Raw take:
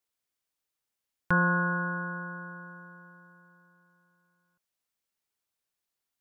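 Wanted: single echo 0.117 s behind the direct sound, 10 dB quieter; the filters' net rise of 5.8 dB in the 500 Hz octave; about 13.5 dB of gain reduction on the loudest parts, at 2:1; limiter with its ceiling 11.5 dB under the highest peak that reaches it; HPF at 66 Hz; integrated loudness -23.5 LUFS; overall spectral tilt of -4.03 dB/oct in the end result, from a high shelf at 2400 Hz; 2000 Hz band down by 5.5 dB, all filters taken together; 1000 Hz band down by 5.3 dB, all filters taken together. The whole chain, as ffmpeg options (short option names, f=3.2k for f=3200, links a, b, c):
-af "highpass=66,equalizer=f=500:t=o:g=8,equalizer=f=1k:t=o:g=-5.5,equalizer=f=2k:t=o:g=-4.5,highshelf=f=2.4k:g=-4,acompressor=threshold=-47dB:ratio=2,alimiter=level_in=11dB:limit=-24dB:level=0:latency=1,volume=-11dB,aecho=1:1:117:0.316,volume=24.5dB"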